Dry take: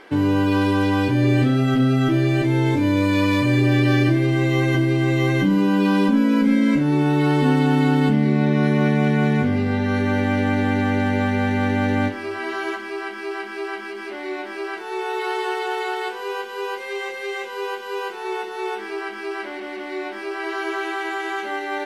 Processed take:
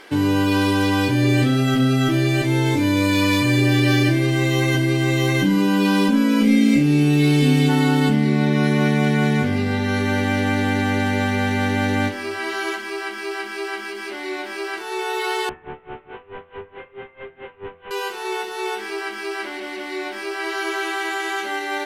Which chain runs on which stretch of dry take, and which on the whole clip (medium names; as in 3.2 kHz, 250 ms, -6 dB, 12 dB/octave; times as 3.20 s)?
6.39–7.68 s: high-order bell 1.2 kHz -14 dB 1.2 oct + mains buzz 400 Hz, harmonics 8, -40 dBFS + doubling 28 ms -4.5 dB
15.49–17.91 s: one-bit delta coder 16 kbps, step -42 dBFS + logarithmic tremolo 4.6 Hz, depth 24 dB
whole clip: treble shelf 3.2 kHz +11 dB; de-hum 83.36 Hz, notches 33